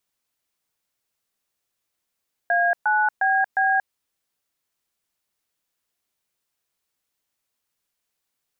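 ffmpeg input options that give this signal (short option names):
-f lavfi -i "aevalsrc='0.106*clip(min(mod(t,0.356),0.232-mod(t,0.356))/0.002,0,1)*(eq(floor(t/0.356),0)*(sin(2*PI*697*mod(t,0.356))+sin(2*PI*1633*mod(t,0.356)))+eq(floor(t/0.356),1)*(sin(2*PI*852*mod(t,0.356))+sin(2*PI*1477*mod(t,0.356)))+eq(floor(t/0.356),2)*(sin(2*PI*770*mod(t,0.356))+sin(2*PI*1633*mod(t,0.356)))+eq(floor(t/0.356),3)*(sin(2*PI*770*mod(t,0.356))+sin(2*PI*1633*mod(t,0.356))))':d=1.424:s=44100"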